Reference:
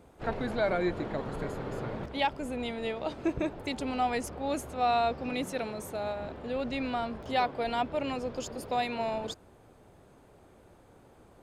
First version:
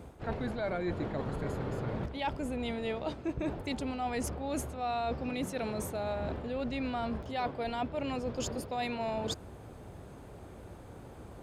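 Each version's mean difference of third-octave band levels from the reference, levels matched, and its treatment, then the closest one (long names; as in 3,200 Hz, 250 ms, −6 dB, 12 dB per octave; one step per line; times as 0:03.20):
4.0 dB: high-pass filter 43 Hz
low-shelf EQ 140 Hz +9.5 dB
reversed playback
downward compressor 6 to 1, threshold −38 dBFS, peak gain reduction 14.5 dB
reversed playback
level +6 dB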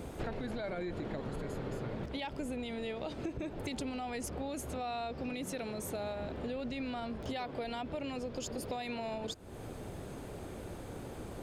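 6.5 dB: parametric band 1,000 Hz −5.5 dB 1.8 octaves
brickwall limiter −28 dBFS, peak gain reduction 9 dB
downward compressor 8 to 1, threshold −51 dBFS, peak gain reduction 18 dB
level +14.5 dB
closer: first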